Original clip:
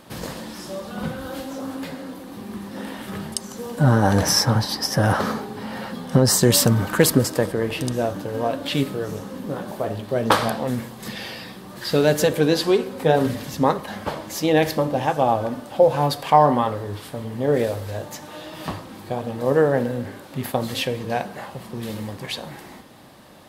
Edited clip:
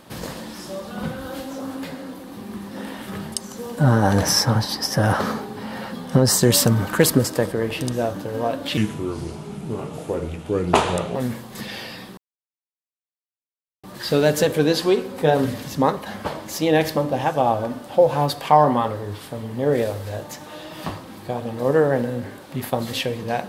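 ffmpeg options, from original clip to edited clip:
-filter_complex "[0:a]asplit=4[a][b][c][d];[a]atrim=end=8.774[e];[b]atrim=start=8.77:end=10.63,asetpts=PTS-STARTPTS,asetrate=34398,aresample=44100[f];[c]atrim=start=10.626:end=11.65,asetpts=PTS-STARTPTS,afade=t=out:st=1.02:d=0.004:c=hsin,apad=pad_dur=1.66[g];[d]atrim=start=11.65,asetpts=PTS-STARTPTS,afade=t=in:d=0.004:c=hsin[h];[e][f]acrossfade=d=0.004:c1=hsin:c2=hsin[i];[g][h]concat=n=2:v=0:a=1[j];[i][j]acrossfade=d=0.004:c1=hsin:c2=hsin"

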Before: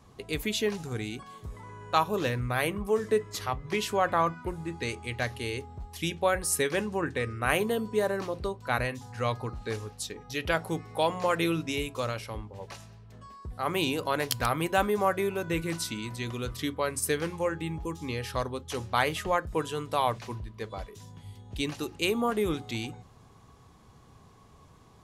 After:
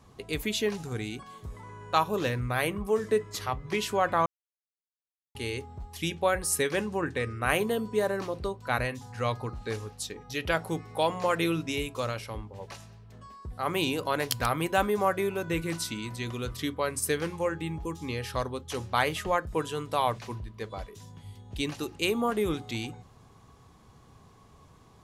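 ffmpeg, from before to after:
-filter_complex "[0:a]asplit=3[a][b][c];[a]atrim=end=4.26,asetpts=PTS-STARTPTS,afade=t=out:st=4.256:d=0.004:c=hsin[d];[b]atrim=start=4.26:end=5.35,asetpts=PTS-STARTPTS,volume=0[e];[c]atrim=start=5.35,asetpts=PTS-STARTPTS,afade=t=in:d=0.004:c=hsin[f];[d][e][f]concat=n=3:v=0:a=1"

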